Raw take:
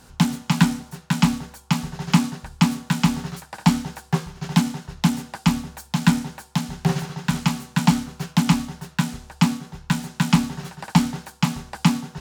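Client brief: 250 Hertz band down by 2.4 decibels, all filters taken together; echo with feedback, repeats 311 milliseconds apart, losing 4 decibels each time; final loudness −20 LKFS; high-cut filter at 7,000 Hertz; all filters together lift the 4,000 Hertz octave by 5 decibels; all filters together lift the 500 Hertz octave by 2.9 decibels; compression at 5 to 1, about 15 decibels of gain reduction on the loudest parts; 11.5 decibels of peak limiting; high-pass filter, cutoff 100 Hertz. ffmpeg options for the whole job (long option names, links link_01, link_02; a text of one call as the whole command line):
ffmpeg -i in.wav -af "highpass=100,lowpass=7000,equalizer=frequency=250:width_type=o:gain=-4,equalizer=frequency=500:width_type=o:gain=5.5,equalizer=frequency=4000:width_type=o:gain=7,acompressor=threshold=-30dB:ratio=5,alimiter=limit=-21dB:level=0:latency=1,aecho=1:1:311|622|933|1244|1555|1866|2177|2488|2799:0.631|0.398|0.25|0.158|0.0994|0.0626|0.0394|0.0249|0.0157,volume=16dB" out.wav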